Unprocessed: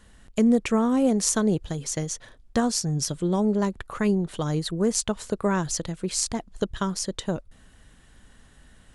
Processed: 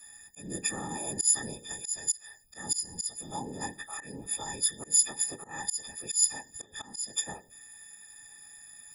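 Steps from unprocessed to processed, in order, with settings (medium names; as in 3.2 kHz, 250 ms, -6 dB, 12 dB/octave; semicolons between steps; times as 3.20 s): partials quantised in pitch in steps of 6 st; treble shelf 6 kHz +8 dB; feedback comb 220 Hz, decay 0.29 s, harmonics all, mix 50%; on a send at -17 dB: reverberation RT60 0.50 s, pre-delay 4 ms; on the sum: whisper effect; in parallel at +1 dB: compression, threshold -29 dBFS, peak gain reduction 20.5 dB; on the sum: slow attack 196 ms; pre-emphasis filter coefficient 0.8; small resonant body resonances 820/1800 Hz, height 12 dB, ringing for 45 ms; trim -6 dB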